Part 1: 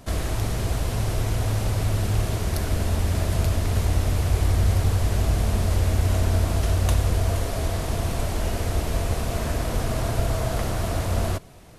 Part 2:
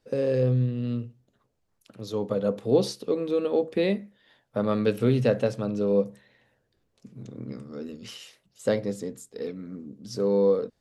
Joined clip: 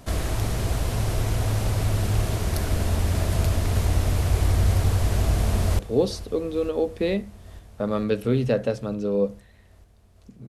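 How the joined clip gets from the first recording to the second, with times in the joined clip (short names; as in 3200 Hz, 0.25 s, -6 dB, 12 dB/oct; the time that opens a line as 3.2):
part 1
5.2–5.79 echo throw 0.45 s, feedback 80%, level -17.5 dB
5.79 switch to part 2 from 2.55 s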